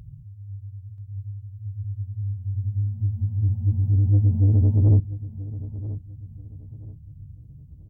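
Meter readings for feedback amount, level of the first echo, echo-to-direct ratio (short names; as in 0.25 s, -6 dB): 30%, -15.0 dB, -14.5 dB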